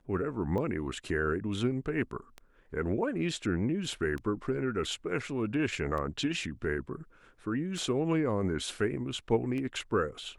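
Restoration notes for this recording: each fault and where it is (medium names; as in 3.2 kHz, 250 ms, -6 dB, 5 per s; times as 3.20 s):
tick 33 1/3 rpm -26 dBFS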